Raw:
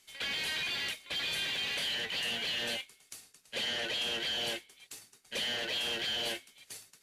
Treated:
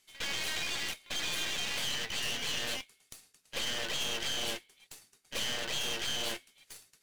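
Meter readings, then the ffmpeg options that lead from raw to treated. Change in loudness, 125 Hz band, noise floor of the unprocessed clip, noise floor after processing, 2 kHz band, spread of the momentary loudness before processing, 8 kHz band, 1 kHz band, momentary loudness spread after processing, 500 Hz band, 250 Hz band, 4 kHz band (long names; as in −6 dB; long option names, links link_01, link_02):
−1.0 dB, +3.5 dB, −66 dBFS, −71 dBFS, −1.5 dB, 17 LU, +6.0 dB, +1.5 dB, 20 LU, −1.0 dB, +0.5 dB, −1.5 dB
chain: -af "aeval=exprs='0.0631*(cos(1*acos(clip(val(0)/0.0631,-1,1)))-cos(1*PI/2))+0.00447*(cos(3*acos(clip(val(0)/0.0631,-1,1)))-cos(3*PI/2))+0.0158*(cos(4*acos(clip(val(0)/0.0631,-1,1)))-cos(4*PI/2))+0.002*(cos(7*acos(clip(val(0)/0.0631,-1,1)))-cos(7*PI/2))':channel_layout=same,acrusher=bits=5:mode=log:mix=0:aa=0.000001"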